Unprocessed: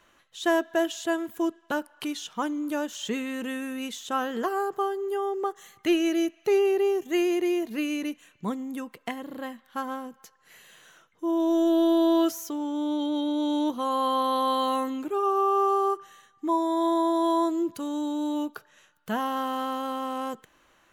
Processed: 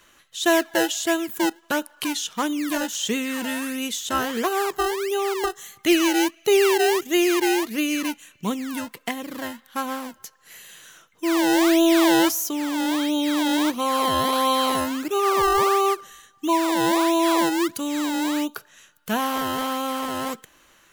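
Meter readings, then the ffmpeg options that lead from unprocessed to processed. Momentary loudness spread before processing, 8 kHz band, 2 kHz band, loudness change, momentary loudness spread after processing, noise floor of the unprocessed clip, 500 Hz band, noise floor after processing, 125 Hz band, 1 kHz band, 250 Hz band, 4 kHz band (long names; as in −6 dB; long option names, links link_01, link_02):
12 LU, +13.5 dB, +10.0 dB, +5.0 dB, 12 LU, −63 dBFS, +3.5 dB, −58 dBFS, can't be measured, +4.0 dB, +4.0 dB, +10.5 dB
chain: -filter_complex "[0:a]highshelf=frequency=4100:gain=9,acrossover=split=760[link_01][link_02];[link_01]acrusher=samples=26:mix=1:aa=0.000001:lfo=1:lforange=26:lforate=1.5[link_03];[link_03][link_02]amix=inputs=2:normalize=0,volume=4.5dB"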